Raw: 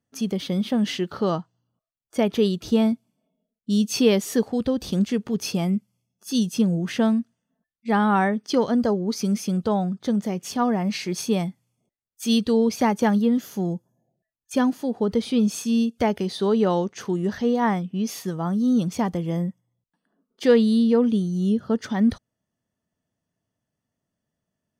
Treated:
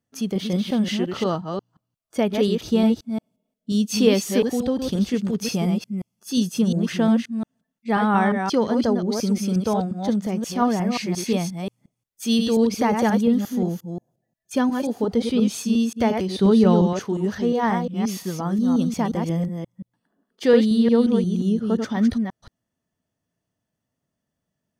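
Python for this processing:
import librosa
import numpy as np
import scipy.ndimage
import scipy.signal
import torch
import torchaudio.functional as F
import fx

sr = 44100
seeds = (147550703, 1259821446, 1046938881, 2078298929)

y = fx.reverse_delay(x, sr, ms=177, wet_db=-5)
y = fx.bass_treble(y, sr, bass_db=11, treble_db=1, at=(16.38, 16.93))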